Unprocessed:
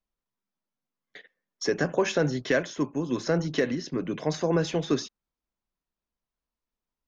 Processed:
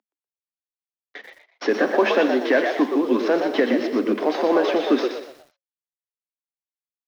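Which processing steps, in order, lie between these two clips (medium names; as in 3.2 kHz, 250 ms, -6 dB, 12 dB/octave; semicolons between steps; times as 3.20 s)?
CVSD coder 32 kbps; low-pass 3.3 kHz 12 dB/octave; in parallel at -1 dB: peak limiter -22.5 dBFS, peak gain reduction 9.5 dB; on the sum: rippled Chebyshev high-pass 210 Hz, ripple 3 dB; frequency-shifting echo 121 ms, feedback 31%, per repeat +83 Hz, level -6 dB; bit-crushed delay 87 ms, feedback 55%, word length 8-bit, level -14 dB; trim +5.5 dB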